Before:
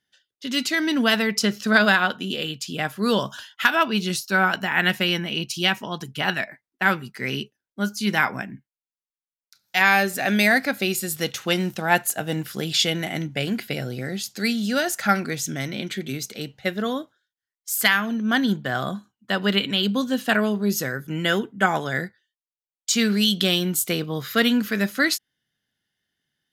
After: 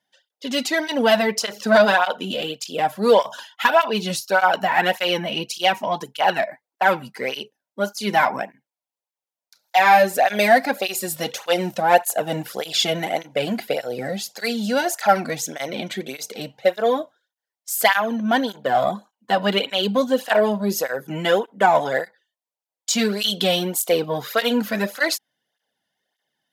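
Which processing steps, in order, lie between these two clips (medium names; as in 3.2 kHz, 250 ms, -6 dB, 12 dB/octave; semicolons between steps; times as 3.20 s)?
high-pass 210 Hz 6 dB/octave; high-order bell 680 Hz +11 dB 1.3 oct; in parallel at -5 dB: saturation -17.5 dBFS, distortion -7 dB; on the sum: cancelling through-zero flanger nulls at 1.7 Hz, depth 2.6 ms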